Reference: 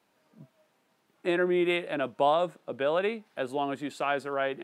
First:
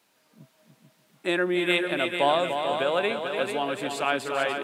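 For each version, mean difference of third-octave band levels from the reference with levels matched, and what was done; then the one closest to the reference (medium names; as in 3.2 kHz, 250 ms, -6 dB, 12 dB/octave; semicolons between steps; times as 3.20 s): 7.5 dB: treble shelf 2.2 kHz +10.5 dB; on a send: multi-head delay 147 ms, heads second and third, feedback 47%, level -7 dB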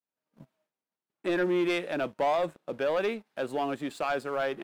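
3.5 dB: expander -60 dBFS; waveshaping leveller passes 2; trim -6.5 dB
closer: second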